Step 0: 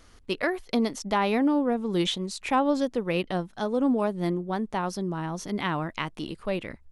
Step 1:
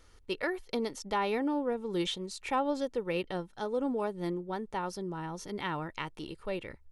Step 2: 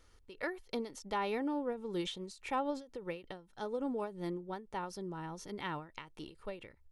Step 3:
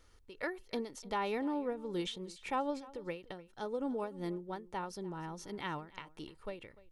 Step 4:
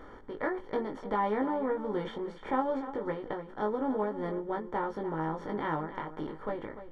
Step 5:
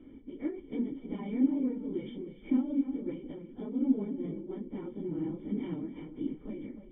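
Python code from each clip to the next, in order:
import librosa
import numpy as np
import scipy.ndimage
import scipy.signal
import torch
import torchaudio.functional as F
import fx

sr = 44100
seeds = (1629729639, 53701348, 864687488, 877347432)

y1 = x + 0.4 * np.pad(x, (int(2.2 * sr / 1000.0), 0))[:len(x)]
y1 = y1 * 10.0 ** (-6.5 / 20.0)
y2 = fx.end_taper(y1, sr, db_per_s=150.0)
y2 = y2 * 10.0 ** (-4.5 / 20.0)
y3 = y2 + 10.0 ** (-20.0 / 20.0) * np.pad(y2, (int(297 * sr / 1000.0), 0))[:len(y2)]
y4 = fx.bin_compress(y3, sr, power=0.6)
y4 = scipy.signal.savgol_filter(y4, 41, 4, mode='constant')
y4 = fx.doubler(y4, sr, ms=19.0, db=-3.5)
y4 = y4 * 10.0 ** (2.0 / 20.0)
y5 = fx.phase_scramble(y4, sr, seeds[0], window_ms=50)
y5 = fx.formant_cascade(y5, sr, vowel='i')
y5 = y5 + 10.0 ** (-20.0 / 20.0) * np.pad(y5, (int(350 * sr / 1000.0), 0))[:len(y5)]
y5 = y5 * 10.0 ** (8.0 / 20.0)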